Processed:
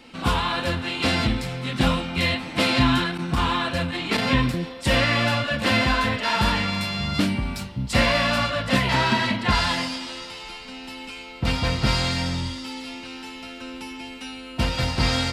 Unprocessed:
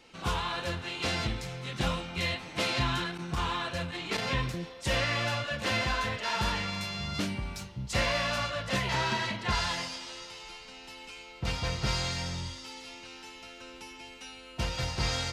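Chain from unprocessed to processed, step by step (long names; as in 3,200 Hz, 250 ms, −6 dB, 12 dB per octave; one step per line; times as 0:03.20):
thirty-one-band graphic EQ 250 Hz +11 dB, 400 Hz −3 dB, 6,300 Hz −8 dB
level +8.5 dB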